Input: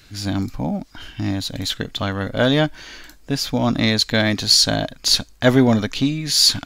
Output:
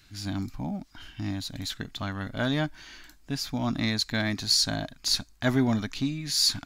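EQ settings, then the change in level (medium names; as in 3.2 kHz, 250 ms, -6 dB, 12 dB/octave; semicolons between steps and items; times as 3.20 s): dynamic bell 3.1 kHz, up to -6 dB, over -38 dBFS, Q 3.8; peaking EQ 500 Hz -11.5 dB 0.43 oct; -8.5 dB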